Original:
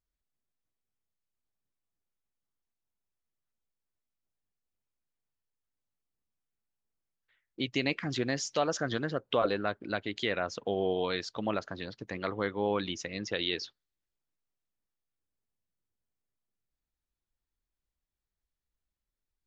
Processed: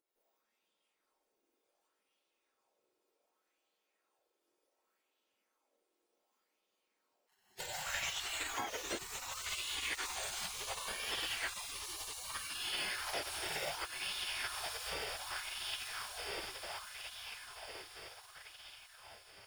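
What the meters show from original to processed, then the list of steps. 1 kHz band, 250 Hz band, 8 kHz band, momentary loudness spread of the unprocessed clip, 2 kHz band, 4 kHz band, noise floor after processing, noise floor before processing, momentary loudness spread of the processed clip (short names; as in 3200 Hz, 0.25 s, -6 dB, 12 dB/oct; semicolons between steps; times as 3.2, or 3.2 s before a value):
-6.0 dB, -20.5 dB, n/a, 7 LU, -2.0 dB, 0.0 dB, -84 dBFS, under -85 dBFS, 14 LU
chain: spectrum mirrored in octaves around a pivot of 980 Hz; in parallel at -9.5 dB: sample-and-hold 37×; on the sum: high shelf 2200 Hz +7 dB; diffused feedback echo 1.261 s, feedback 45%, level -8 dB; non-linear reverb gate 0.23 s rising, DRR -7.5 dB; compressor 6:1, threshold -33 dBFS, peak gain reduction 19 dB; spectral gate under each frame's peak -20 dB weak; LFO bell 0.67 Hz 350–3200 Hz +10 dB; gain +4.5 dB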